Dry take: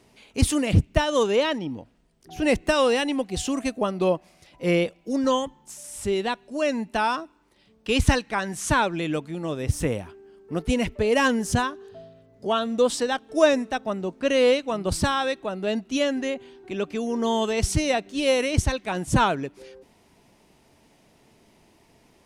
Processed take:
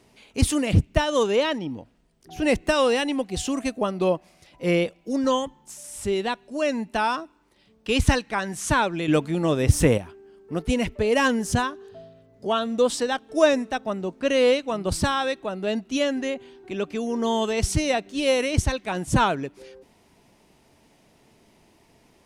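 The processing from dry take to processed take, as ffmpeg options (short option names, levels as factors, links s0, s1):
-filter_complex "[0:a]asettb=1/sr,asplit=3[s0][s1][s2];[s0]atrim=end=9.084[s3];[s1]atrim=start=9.08:end=9.98,asetpts=PTS-STARTPTS,afade=t=in:d=0.004:c=qsin,afade=t=out:st=0.896:d=0.004:c=qsin,acontrast=85[s4];[s2]atrim=start=9.976[s5];[s3][s4]acrossfade=d=0.004:c1=hsin:c2=qsin[s6];[s6][s5]acrossfade=d=0.004:c1=qsin:c2=hsin"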